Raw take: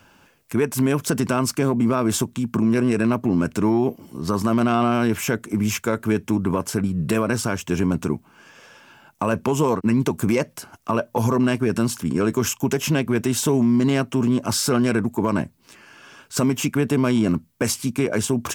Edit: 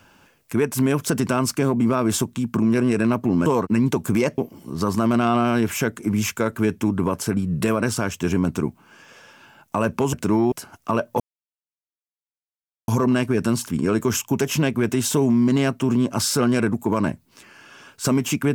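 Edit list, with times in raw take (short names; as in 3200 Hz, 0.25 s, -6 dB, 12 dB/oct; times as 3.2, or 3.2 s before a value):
3.46–3.85 swap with 9.6–10.52
11.2 insert silence 1.68 s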